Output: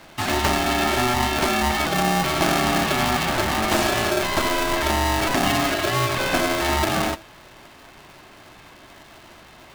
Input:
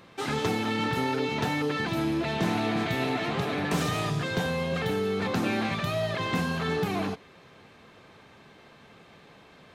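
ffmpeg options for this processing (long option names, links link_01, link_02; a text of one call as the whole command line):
ffmpeg -i in.wav -af "bandreject=frequency=60:width_type=h:width=6,bandreject=frequency=120:width_type=h:width=6,bandreject=frequency=180:width_type=h:width=6,afreqshift=-21,aeval=exprs='val(0)*sgn(sin(2*PI*490*n/s))':channel_layout=same,volume=7dB" out.wav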